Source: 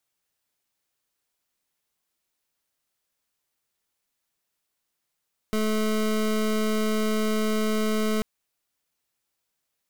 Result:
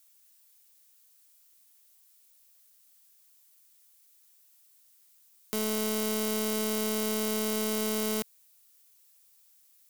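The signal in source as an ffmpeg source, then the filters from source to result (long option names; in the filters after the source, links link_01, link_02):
-f lavfi -i "aevalsrc='0.0631*(2*lt(mod(216*t,1),0.25)-1)':duration=2.69:sample_rate=44100"
-af "highpass=220,asoftclip=type=hard:threshold=-27dB,crystalizer=i=5:c=0"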